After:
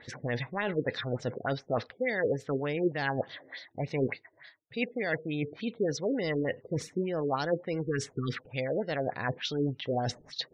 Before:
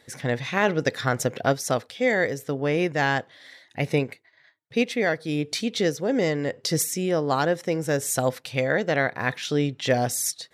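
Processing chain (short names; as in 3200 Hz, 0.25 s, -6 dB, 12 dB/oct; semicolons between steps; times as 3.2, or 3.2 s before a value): spectral repair 7.83–8.38, 490–1100 Hz after; in parallel at -8.5 dB: soft clip -26 dBFS, distortion -7 dB; on the sum: de-esser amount 50%; low shelf 94 Hz +4.5 dB; reverse; compressor 6:1, threshold -30 dBFS, peak gain reduction 14.5 dB; reverse; LFO low-pass sine 3.4 Hz 380–5100 Hz; spectral gate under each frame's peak -30 dB strong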